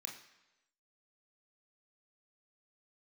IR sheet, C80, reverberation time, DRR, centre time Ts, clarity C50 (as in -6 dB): 10.0 dB, 1.0 s, 0.5 dB, 28 ms, 7.0 dB